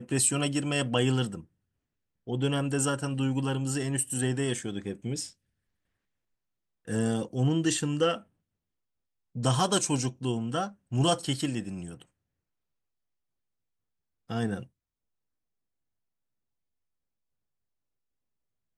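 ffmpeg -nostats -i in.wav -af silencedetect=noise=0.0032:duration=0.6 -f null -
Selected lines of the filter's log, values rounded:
silence_start: 1.45
silence_end: 2.27 | silence_duration: 0.82
silence_start: 5.33
silence_end: 6.87 | silence_duration: 1.55
silence_start: 8.23
silence_end: 9.35 | silence_duration: 1.13
silence_start: 12.03
silence_end: 14.30 | silence_duration: 2.26
silence_start: 14.66
silence_end: 18.78 | silence_duration: 4.11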